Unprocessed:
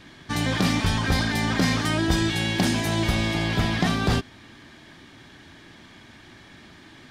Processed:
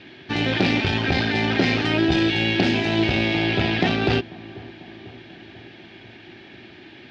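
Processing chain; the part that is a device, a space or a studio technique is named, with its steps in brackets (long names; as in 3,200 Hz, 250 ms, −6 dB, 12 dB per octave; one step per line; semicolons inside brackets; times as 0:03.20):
analogue delay pedal into a guitar amplifier (bucket-brigade delay 493 ms, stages 4,096, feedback 66%, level −20.5 dB; tube saturation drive 15 dB, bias 0.65; loudspeaker in its box 96–4,500 Hz, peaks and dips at 170 Hz −4 dB, 370 Hz +8 dB, 750 Hz +3 dB, 1,100 Hz −10 dB, 2,600 Hz +8 dB)
level +5.5 dB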